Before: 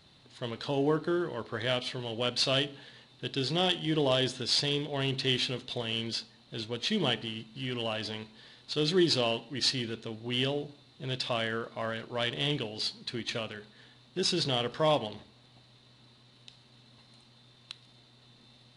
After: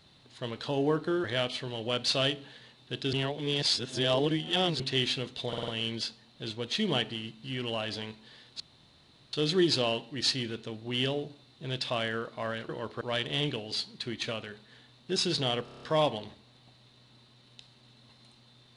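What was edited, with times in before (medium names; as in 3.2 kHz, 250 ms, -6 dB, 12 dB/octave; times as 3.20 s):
1.24–1.56 s: move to 12.08 s
3.45–5.12 s: reverse
5.80 s: stutter 0.05 s, 5 plays
8.72 s: insert room tone 0.73 s
14.71 s: stutter 0.03 s, 7 plays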